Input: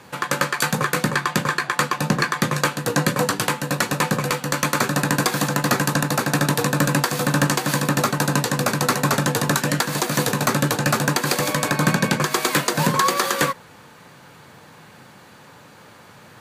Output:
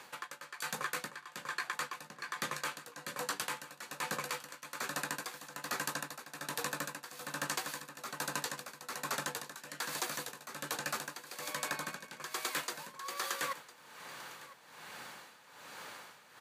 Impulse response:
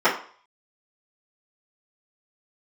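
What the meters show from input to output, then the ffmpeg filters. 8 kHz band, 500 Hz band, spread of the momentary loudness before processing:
−16.0 dB, −22.0 dB, 3 LU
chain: -af "highpass=frequency=1000:poles=1,areverse,acompressor=threshold=-37dB:ratio=5,areverse,tremolo=f=1.2:d=0.79,aecho=1:1:1005:0.126,volume=2dB"

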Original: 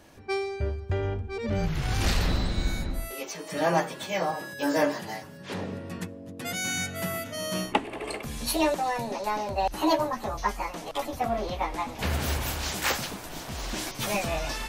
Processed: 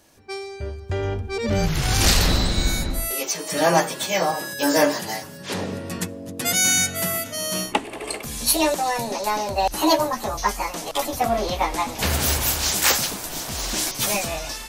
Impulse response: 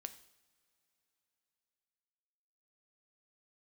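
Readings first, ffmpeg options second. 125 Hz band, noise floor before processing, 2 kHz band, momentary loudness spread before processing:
+4.5 dB, −43 dBFS, +6.5 dB, 10 LU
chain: -af "dynaudnorm=framelen=390:gausssize=5:maxgain=13dB,bass=frequency=250:gain=-2,treble=frequency=4000:gain=9,volume=-4dB"

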